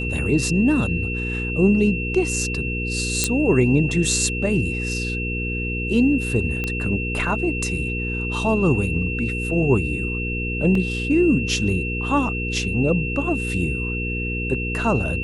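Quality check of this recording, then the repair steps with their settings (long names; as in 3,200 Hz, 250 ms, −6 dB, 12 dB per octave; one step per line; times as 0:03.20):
mains hum 60 Hz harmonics 8 −27 dBFS
whistle 2,700 Hz −27 dBFS
0:03.24: click −3 dBFS
0:06.64: click −12 dBFS
0:10.75: drop-out 2.8 ms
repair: click removal
notch filter 2,700 Hz, Q 30
hum removal 60 Hz, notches 8
repair the gap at 0:10.75, 2.8 ms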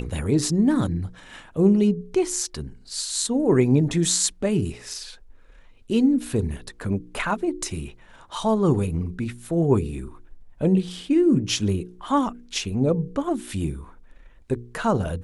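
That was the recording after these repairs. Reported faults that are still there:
none of them is left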